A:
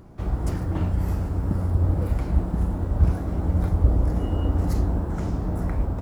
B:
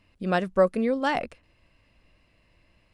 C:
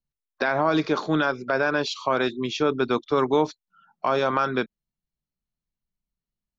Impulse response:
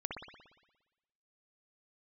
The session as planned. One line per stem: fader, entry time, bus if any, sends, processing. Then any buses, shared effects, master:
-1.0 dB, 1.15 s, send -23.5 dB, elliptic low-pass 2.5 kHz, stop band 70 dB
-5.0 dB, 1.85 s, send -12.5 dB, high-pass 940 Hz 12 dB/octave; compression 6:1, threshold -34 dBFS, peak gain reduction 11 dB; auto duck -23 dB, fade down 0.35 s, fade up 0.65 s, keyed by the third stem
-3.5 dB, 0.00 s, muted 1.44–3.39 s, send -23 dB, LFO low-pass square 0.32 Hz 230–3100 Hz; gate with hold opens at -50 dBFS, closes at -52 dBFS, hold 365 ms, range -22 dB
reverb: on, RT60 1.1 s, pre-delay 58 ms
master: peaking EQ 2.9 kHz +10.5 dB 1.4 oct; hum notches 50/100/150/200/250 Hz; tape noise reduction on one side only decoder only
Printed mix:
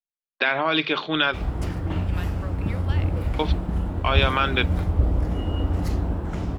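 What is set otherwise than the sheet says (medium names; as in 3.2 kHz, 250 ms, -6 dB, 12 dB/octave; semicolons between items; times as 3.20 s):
stem A: missing elliptic low-pass 2.5 kHz, stop band 70 dB; reverb return -8.0 dB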